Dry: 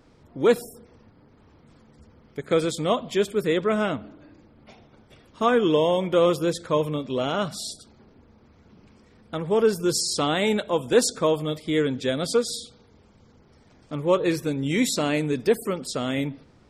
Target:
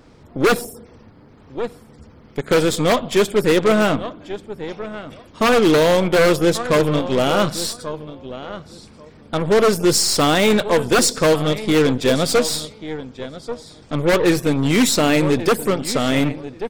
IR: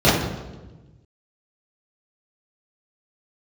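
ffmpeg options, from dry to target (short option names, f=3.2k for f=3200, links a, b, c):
-filter_complex "[0:a]asplit=2[a][b];[b]adelay=1137,lowpass=f=3.7k:p=1,volume=-15dB,asplit=2[c][d];[d]adelay=1137,lowpass=f=3.7k:p=1,volume=0.17[e];[a][c][e]amix=inputs=3:normalize=0,aeval=exprs='0.15*(abs(mod(val(0)/0.15+3,4)-2)-1)':c=same,aeval=exprs='0.158*(cos(1*acos(clip(val(0)/0.158,-1,1)))-cos(1*PI/2))+0.0141*(cos(8*acos(clip(val(0)/0.158,-1,1)))-cos(8*PI/2))':c=same,volume=8dB"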